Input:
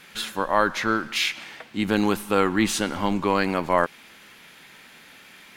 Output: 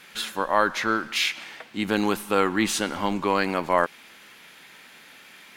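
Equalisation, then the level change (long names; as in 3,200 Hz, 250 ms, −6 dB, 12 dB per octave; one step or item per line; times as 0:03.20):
low-shelf EQ 180 Hz −7.5 dB
0.0 dB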